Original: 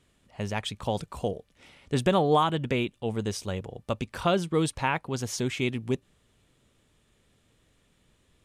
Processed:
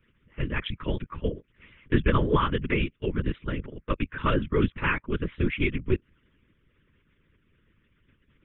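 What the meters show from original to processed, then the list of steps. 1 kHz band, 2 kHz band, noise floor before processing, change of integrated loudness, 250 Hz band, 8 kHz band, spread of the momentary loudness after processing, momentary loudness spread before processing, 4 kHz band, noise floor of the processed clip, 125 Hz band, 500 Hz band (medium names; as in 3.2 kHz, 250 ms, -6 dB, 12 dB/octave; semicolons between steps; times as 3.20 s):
-3.0 dB, +4.0 dB, -68 dBFS, +0.5 dB, +1.5 dB, under -40 dB, 10 LU, 10 LU, -3.5 dB, -69 dBFS, +2.5 dB, -1.5 dB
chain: LPC vocoder at 8 kHz whisper; harmonic-percussive split harmonic -14 dB; static phaser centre 1.8 kHz, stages 4; trim +7 dB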